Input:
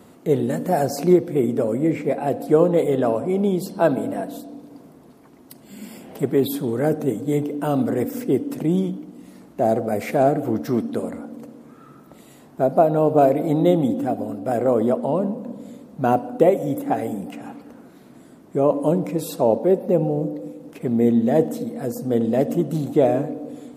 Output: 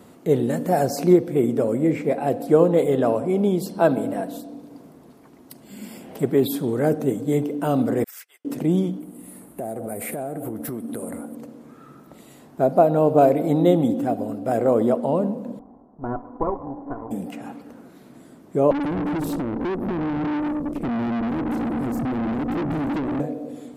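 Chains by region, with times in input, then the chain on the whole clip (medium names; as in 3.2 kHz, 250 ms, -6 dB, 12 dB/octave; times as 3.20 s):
8.04–8.45 s: high-pass 1.3 kHz 24 dB/octave + upward expansion 2.5:1, over -58 dBFS
9.00–11.35 s: resonant high shelf 7.5 kHz +10.5 dB, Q 3 + compression 10:1, threshold -26 dBFS
15.59–17.11 s: comb filter that takes the minimum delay 0.6 ms + four-pole ladder low-pass 1 kHz, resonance 50% + comb 2.9 ms, depth 32%
18.71–23.20 s: compression 5:1, threshold -27 dBFS + resonant low shelf 460 Hz +13.5 dB, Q 3 + valve stage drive 23 dB, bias 0.7
whole clip: none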